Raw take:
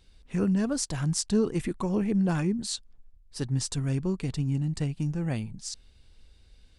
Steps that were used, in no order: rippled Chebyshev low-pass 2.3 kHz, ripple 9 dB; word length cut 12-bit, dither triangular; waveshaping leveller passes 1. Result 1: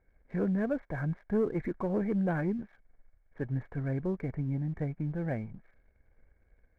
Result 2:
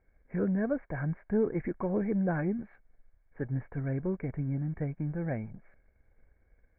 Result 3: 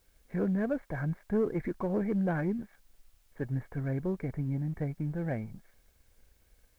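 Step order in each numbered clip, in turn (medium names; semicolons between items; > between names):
word length cut > rippled Chebyshev low-pass > waveshaping leveller; waveshaping leveller > word length cut > rippled Chebyshev low-pass; rippled Chebyshev low-pass > waveshaping leveller > word length cut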